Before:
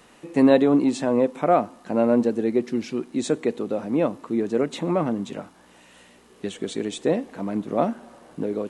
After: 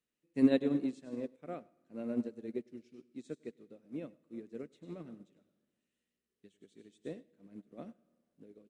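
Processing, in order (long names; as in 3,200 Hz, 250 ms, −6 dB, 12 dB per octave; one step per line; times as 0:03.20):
parametric band 890 Hz −14.5 dB 1.1 octaves
slap from a distant wall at 17 metres, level −13 dB
convolution reverb RT60 1.8 s, pre-delay 75 ms, DRR 11.5 dB
expander for the loud parts 2.5 to 1, over −34 dBFS
level −5.5 dB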